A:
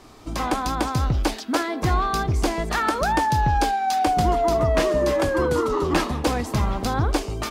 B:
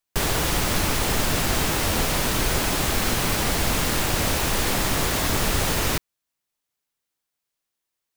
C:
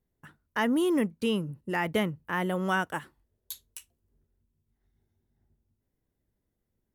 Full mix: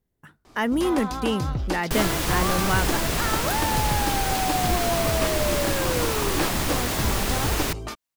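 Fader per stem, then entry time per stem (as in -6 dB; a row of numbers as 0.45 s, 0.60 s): -5.5 dB, -3.0 dB, +2.5 dB; 0.45 s, 1.75 s, 0.00 s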